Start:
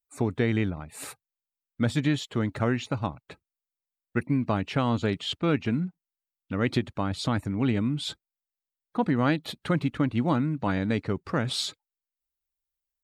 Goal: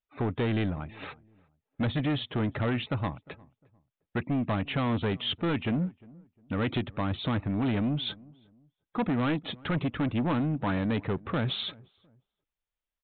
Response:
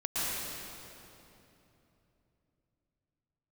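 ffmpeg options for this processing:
-filter_complex "[0:a]aresample=8000,asoftclip=type=tanh:threshold=0.0473,aresample=44100,asplit=2[s0][s1];[s1]adelay=354,lowpass=f=890:p=1,volume=0.0708,asplit=2[s2][s3];[s3]adelay=354,lowpass=f=890:p=1,volume=0.32[s4];[s0][s2][s4]amix=inputs=3:normalize=0,volume=1.41"

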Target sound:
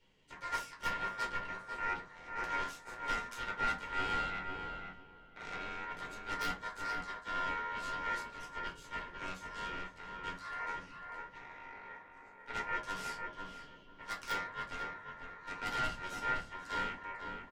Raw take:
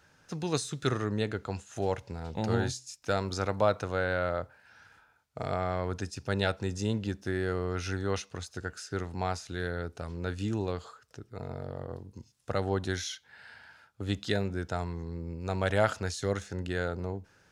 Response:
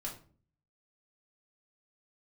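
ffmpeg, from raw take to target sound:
-filter_complex "[0:a]acrossover=split=320 4800:gain=0.0891 1 0.158[s0][s1][s2];[s0][s1][s2]amix=inputs=3:normalize=0,acrossover=split=500|1600[s3][s4][s5];[s4]acompressor=threshold=0.00355:ratio=8[s6];[s3][s6][s5]amix=inputs=3:normalize=0,aeval=exprs='0.133*(cos(1*acos(clip(val(0)/0.133,-1,1)))-cos(1*PI/2))+0.0106*(cos(6*acos(clip(val(0)/0.133,-1,1)))-cos(6*PI/2))+0.0376*(cos(8*acos(clip(val(0)/0.133,-1,1)))-cos(8*PI/2))':c=same,asplit=2[s7][s8];[s8]asetrate=52444,aresample=44100,atempo=0.840896,volume=0.631[s9];[s7][s9]amix=inputs=2:normalize=0,aeval=exprs='val(0)*sin(2*PI*1400*n/s)':c=same,asplit=2[s10][s11];[s11]adelay=497,lowpass=f=1800:p=1,volume=0.631,asplit=2[s12][s13];[s13]adelay=497,lowpass=f=1800:p=1,volume=0.2,asplit=2[s14][s15];[s15]adelay=497,lowpass=f=1800:p=1,volume=0.2[s16];[s10][s12][s14][s16]amix=inputs=4:normalize=0[s17];[1:a]atrim=start_sample=2205,asetrate=70560,aresample=44100[s18];[s17][s18]afir=irnorm=-1:irlink=0,volume=0.891"

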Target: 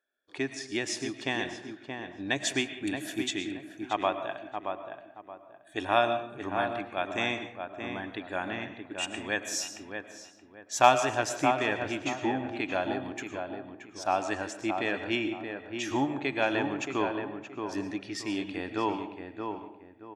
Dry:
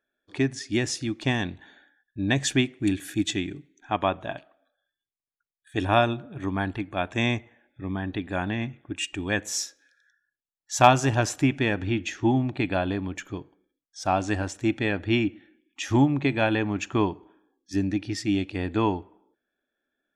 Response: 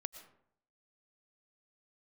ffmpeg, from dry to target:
-filter_complex "[0:a]bass=f=250:g=-15,treble=f=4000:g=-1,asplit=2[s0][s1];[s1]adelay=625,lowpass=f=1700:p=1,volume=0.531,asplit=2[s2][s3];[s3]adelay=625,lowpass=f=1700:p=1,volume=0.31,asplit=2[s4][s5];[s5]adelay=625,lowpass=f=1700:p=1,volume=0.31,asplit=2[s6][s7];[s7]adelay=625,lowpass=f=1700:p=1,volume=0.31[s8];[s0][s2][s4][s6][s8]amix=inputs=5:normalize=0[s9];[1:a]atrim=start_sample=2205[s10];[s9][s10]afir=irnorm=-1:irlink=0"

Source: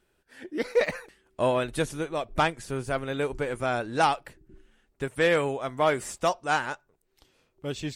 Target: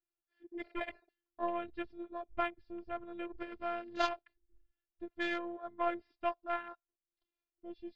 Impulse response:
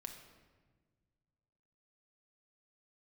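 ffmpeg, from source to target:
-filter_complex "[0:a]asettb=1/sr,asplit=3[s0][s1][s2];[s0]atrim=end=3.404[s3];[s1]atrim=start=3.4:end=4.22,asetpts=PTS-STARTPTS,afade=t=in:d=0.004:c=qsin,afade=t=out:st=0.816:d=0.004:c=qsin,acrusher=bits=2:mode=log:mix=0:aa=0.000001[s4];[s2]atrim=start=4.216[s5];[s3][s4]acrossfade=d=0.004:c1=hsin:c2=qsin[s6];[s6][s5]acrossfade=d=0.004:c1=qsin:c2=hsin,aeval=exprs='0.299*(cos(1*acos(clip(val(0)/0.299,-1,1)))-cos(1*PI/2))+0.0422*(cos(2*acos(clip(val(0)/0.299,-1,1)))-cos(2*PI/2))+0.0473*(cos(3*acos(clip(val(0)/0.299,-1,1)))-cos(3*PI/2))':c=same,aresample=11025,aresample=44100,afwtdn=0.0112,afftfilt=real='hypot(re,im)*cos(PI*b)':imag='0':win_size=512:overlap=0.75,volume=0.631"

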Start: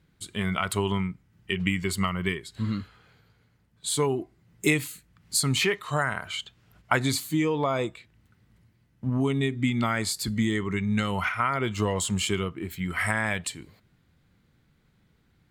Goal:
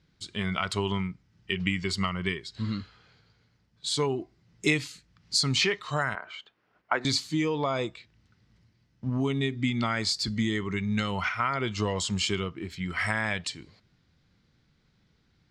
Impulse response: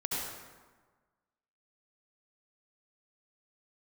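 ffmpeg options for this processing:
-filter_complex "[0:a]lowpass=f=5300:t=q:w=2.6,asettb=1/sr,asplit=3[s0][s1][s2];[s0]atrim=end=6.154[s3];[s1]atrim=start=6.15:end=7.05,asetpts=PTS-STARTPTS,afade=t=in:d=0.004:c=qsin,afade=t=out:st=0.896:d=0.004:c=qsin,acrossover=split=270 2200:gain=0.0708 1 0.112[s4][s5][s6];[s4][s5][s6]amix=inputs=3:normalize=0[s7];[s2]atrim=start=7.046[s8];[s3][s7]acrossfade=d=0.004:c1=hsin:c2=qsin[s9];[s9][s8]acrossfade=d=0.004:c1=qsin:c2=hsin,volume=0.75"

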